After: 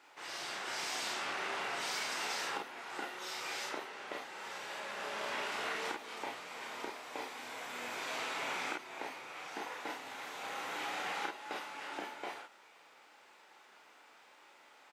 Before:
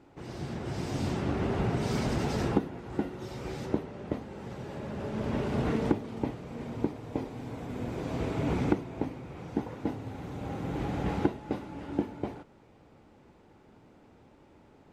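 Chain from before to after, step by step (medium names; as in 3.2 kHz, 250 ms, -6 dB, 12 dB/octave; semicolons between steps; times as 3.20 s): high-pass 1.3 kHz 12 dB/octave; compression, threshold -44 dBFS, peak gain reduction 10 dB; on a send: early reflections 33 ms -3.5 dB, 49 ms -5.5 dB; on the sum: trim +7 dB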